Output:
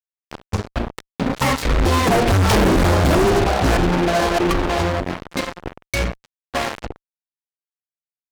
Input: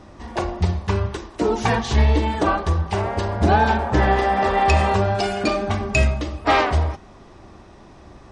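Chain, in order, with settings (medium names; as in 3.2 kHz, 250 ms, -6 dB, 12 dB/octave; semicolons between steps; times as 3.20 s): pitch shift switched off and on -11.5 st, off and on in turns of 270 ms; Doppler pass-by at 2.60 s, 49 m/s, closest 4.2 m; fuzz box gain 49 dB, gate -48 dBFS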